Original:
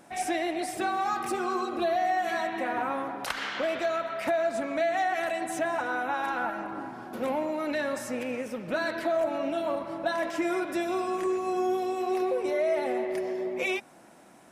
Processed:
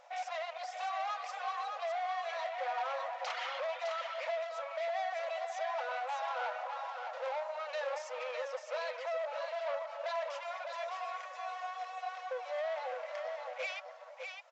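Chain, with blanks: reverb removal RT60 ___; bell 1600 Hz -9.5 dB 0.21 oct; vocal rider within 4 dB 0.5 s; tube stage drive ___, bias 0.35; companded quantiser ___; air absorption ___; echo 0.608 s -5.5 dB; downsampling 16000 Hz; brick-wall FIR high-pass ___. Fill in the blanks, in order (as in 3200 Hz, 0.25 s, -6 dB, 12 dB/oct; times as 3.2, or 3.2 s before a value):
0.81 s, 33 dB, 6-bit, 100 m, 480 Hz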